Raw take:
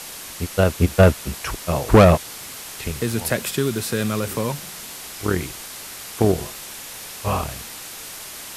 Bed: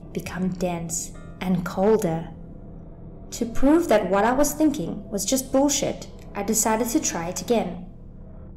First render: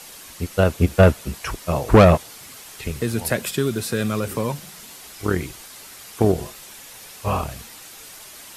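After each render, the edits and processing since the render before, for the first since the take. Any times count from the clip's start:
broadband denoise 7 dB, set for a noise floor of −36 dBFS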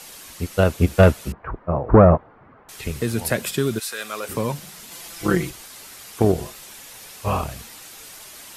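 0:01.32–0:02.69: low-pass filter 1,400 Hz 24 dB per octave
0:03.78–0:04.28: high-pass filter 1,300 Hz → 490 Hz
0:04.91–0:05.50: comb filter 5.9 ms, depth 99%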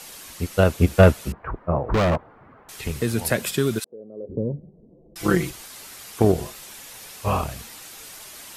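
0:01.91–0:02.97: hard clipping −17.5 dBFS
0:03.84–0:05.16: Butterworth low-pass 520 Hz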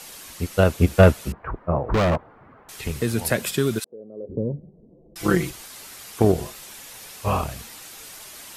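no processing that can be heard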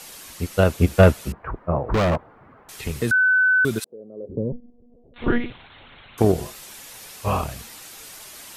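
0:03.11–0:03.65: beep over 1,510 Hz −14 dBFS
0:04.52–0:06.18: one-pitch LPC vocoder at 8 kHz 240 Hz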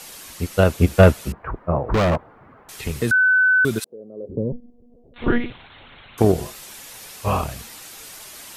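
level +1.5 dB

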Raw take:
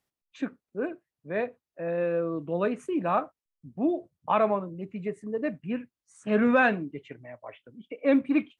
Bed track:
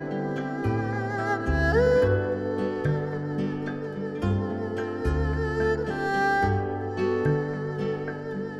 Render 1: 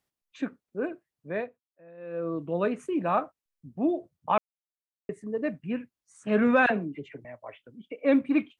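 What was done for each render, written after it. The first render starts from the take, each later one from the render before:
0:01.33–0:02.29: duck −20 dB, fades 0.37 s quadratic
0:04.38–0:05.09: silence
0:06.66–0:07.25: all-pass dispersion lows, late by 44 ms, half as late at 1,000 Hz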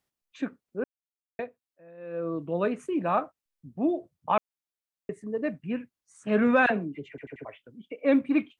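0:00.84–0:01.39: silence
0:07.09: stutter in place 0.09 s, 4 plays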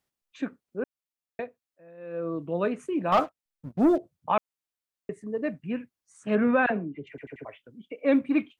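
0:03.12–0:03.98: leveller curve on the samples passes 2
0:06.35–0:07.07: high-frequency loss of the air 330 metres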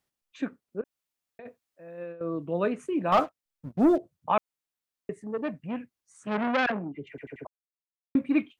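0:00.81–0:02.21: compressor whose output falls as the input rises −41 dBFS
0:05.17–0:06.92: saturating transformer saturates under 1,400 Hz
0:07.47–0:08.15: silence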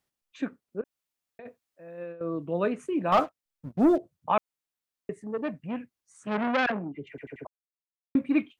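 no processing that can be heard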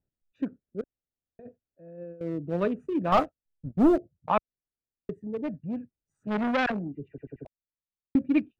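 adaptive Wiener filter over 41 samples
low-shelf EQ 100 Hz +12 dB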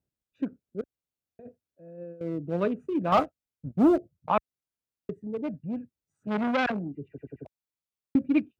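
high-pass filter 56 Hz
notch filter 1,800 Hz, Q 14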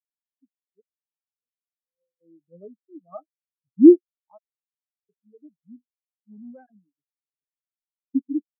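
automatic gain control gain up to 14 dB
every bin expanded away from the loudest bin 4 to 1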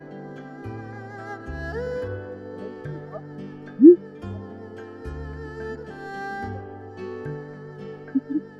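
mix in bed track −9 dB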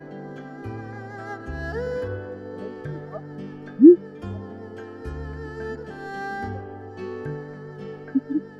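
level +1 dB
brickwall limiter −2 dBFS, peak gain reduction 1.5 dB

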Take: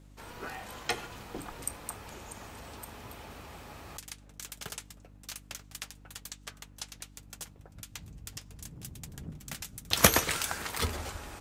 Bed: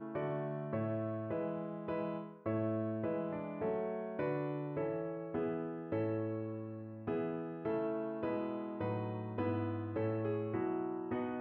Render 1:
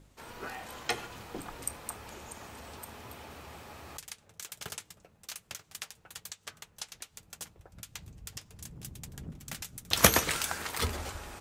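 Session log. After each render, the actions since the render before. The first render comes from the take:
hum removal 50 Hz, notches 6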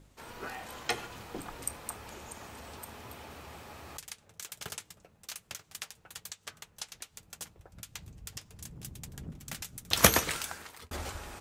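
0:10.10–0:10.91: fade out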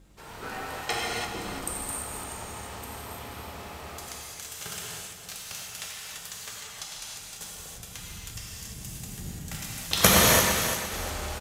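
on a send: repeating echo 343 ms, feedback 34%, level −9 dB
on the sum: reverb whose tail is shaped and stops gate 350 ms flat, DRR −5 dB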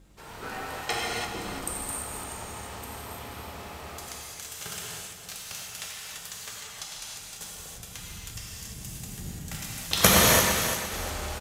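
no processing that can be heard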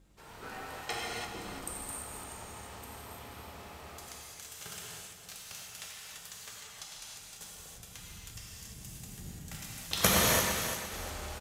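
level −7 dB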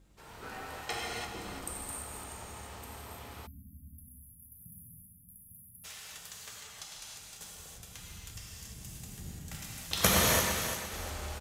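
parametric band 72 Hz +4 dB 0.65 octaves
0:03.46–0:05.85: time-frequency box erased 280–10,000 Hz

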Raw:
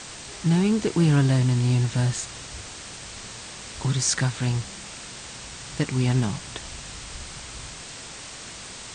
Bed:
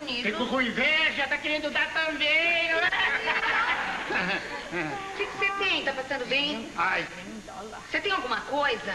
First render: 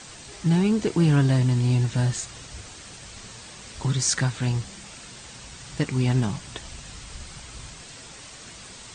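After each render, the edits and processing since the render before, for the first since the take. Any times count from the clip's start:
broadband denoise 6 dB, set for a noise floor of −40 dBFS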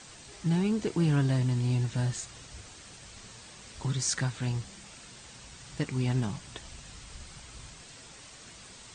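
level −6.5 dB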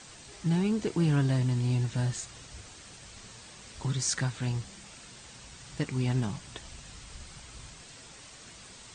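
no processing that can be heard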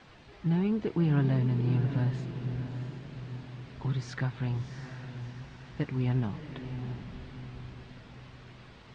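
high-frequency loss of the air 330 metres
feedback delay with all-pass diffusion 687 ms, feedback 48%, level −8.5 dB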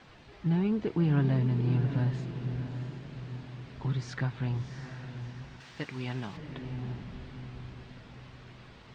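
0:05.60–0:06.37: spectral tilt +3 dB per octave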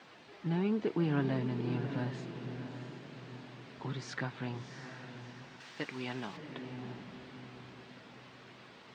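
high-pass filter 230 Hz 12 dB per octave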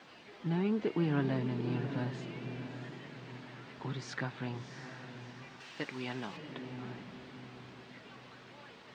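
mix in bed −32 dB

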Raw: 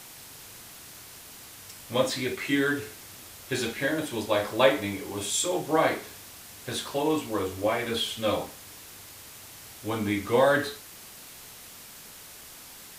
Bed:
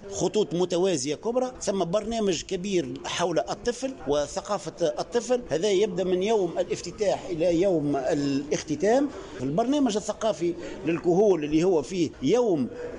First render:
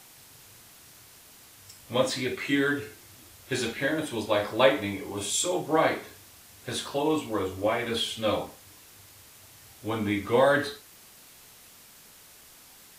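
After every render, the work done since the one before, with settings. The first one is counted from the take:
noise reduction from a noise print 6 dB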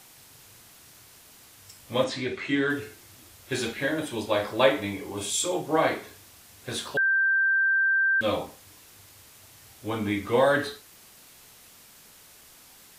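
0:02.04–0:02.70: high-frequency loss of the air 78 metres
0:06.97–0:08.21: beep over 1,570 Hz −19.5 dBFS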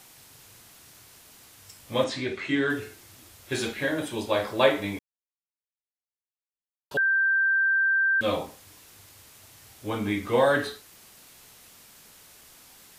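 0:04.99–0:06.91: silence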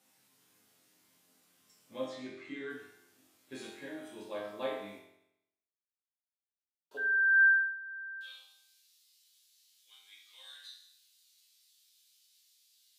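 high-pass filter sweep 210 Hz → 3,900 Hz, 0:06.78–0:07.71
resonators tuned to a chord F2 minor, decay 0.78 s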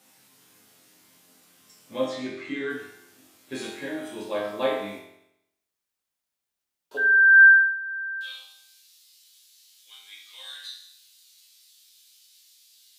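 level +11 dB

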